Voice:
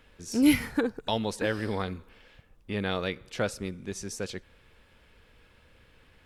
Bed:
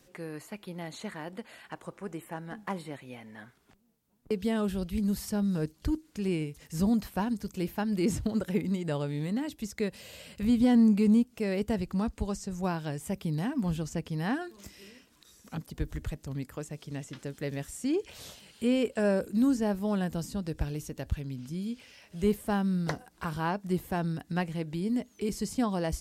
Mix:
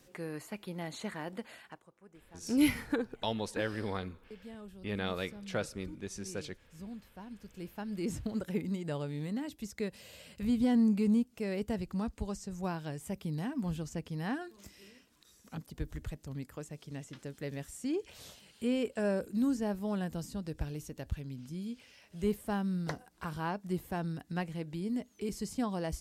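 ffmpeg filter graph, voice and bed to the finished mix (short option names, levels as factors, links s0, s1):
-filter_complex "[0:a]adelay=2150,volume=0.531[s0];[1:a]volume=4.73,afade=t=out:st=1.51:d=0.33:silence=0.11885,afade=t=in:st=7.18:d=1.34:silence=0.199526[s1];[s0][s1]amix=inputs=2:normalize=0"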